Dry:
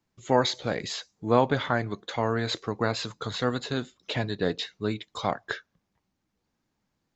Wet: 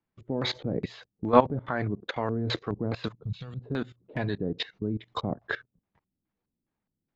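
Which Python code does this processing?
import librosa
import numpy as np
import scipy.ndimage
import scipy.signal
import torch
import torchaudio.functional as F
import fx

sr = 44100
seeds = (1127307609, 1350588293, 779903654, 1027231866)

y = fx.filter_lfo_lowpass(x, sr, shape='square', hz=2.4, low_hz=340.0, high_hz=2600.0, q=0.78)
y = fx.hum_notches(y, sr, base_hz=60, count=2)
y = fx.level_steps(y, sr, step_db=19)
y = fx.spec_box(y, sr, start_s=3.23, length_s=0.38, low_hz=200.0, high_hz=2200.0, gain_db=-18)
y = y * librosa.db_to_amplitude(9.0)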